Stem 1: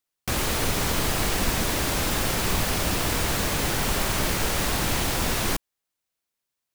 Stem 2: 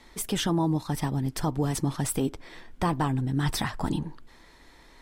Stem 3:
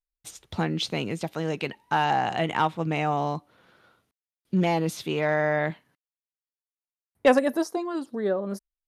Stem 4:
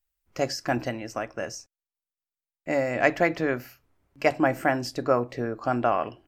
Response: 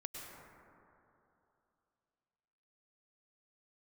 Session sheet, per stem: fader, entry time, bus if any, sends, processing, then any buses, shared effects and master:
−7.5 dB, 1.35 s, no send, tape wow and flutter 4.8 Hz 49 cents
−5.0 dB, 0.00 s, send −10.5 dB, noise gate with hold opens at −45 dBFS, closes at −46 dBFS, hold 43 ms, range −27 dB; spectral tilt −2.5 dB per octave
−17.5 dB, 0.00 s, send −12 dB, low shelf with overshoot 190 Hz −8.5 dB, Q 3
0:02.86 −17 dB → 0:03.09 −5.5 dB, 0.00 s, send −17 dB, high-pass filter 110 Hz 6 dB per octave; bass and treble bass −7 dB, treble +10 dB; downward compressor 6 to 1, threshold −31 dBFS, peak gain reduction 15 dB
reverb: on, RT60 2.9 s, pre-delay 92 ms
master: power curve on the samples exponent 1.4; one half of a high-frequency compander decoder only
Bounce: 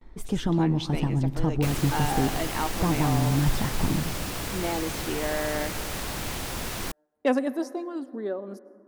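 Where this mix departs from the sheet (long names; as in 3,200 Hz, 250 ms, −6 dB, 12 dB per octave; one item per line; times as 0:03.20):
stem 3 −17.5 dB → −8.0 dB
stem 4: muted
master: missing power curve on the samples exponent 1.4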